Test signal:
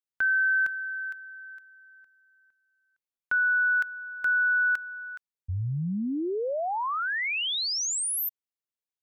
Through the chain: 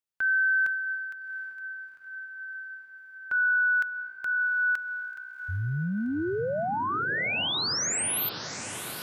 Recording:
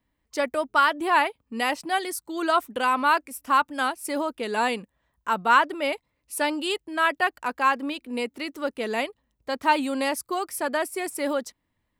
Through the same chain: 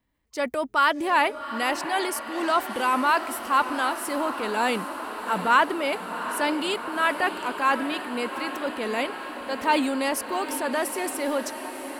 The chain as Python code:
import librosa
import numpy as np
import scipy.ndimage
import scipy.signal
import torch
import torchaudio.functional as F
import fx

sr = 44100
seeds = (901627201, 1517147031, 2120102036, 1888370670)

y = fx.transient(x, sr, attack_db=-3, sustain_db=5)
y = fx.echo_diffused(y, sr, ms=753, feedback_pct=75, wet_db=-11)